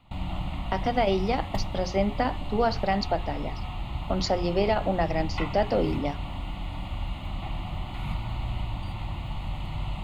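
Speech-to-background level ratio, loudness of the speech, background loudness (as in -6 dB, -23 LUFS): 7.0 dB, -28.0 LUFS, -35.0 LUFS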